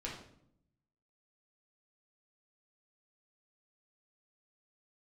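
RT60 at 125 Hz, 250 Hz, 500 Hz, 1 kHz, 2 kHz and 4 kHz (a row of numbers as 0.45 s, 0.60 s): 1.2 s, 1.0 s, 0.75 s, 0.65 s, 0.55 s, 0.50 s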